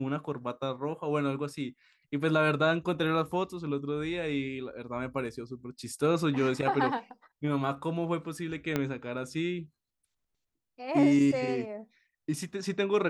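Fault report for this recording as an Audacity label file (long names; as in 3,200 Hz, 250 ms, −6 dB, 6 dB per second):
8.760000	8.760000	click −14 dBFS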